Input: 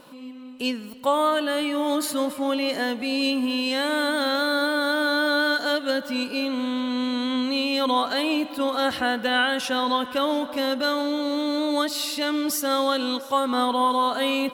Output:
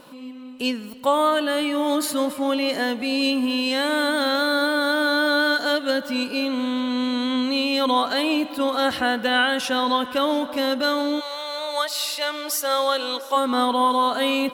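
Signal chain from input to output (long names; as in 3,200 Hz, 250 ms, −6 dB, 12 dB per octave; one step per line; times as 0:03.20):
0:11.19–0:13.35: high-pass filter 720 Hz → 320 Hz 24 dB per octave
level +2 dB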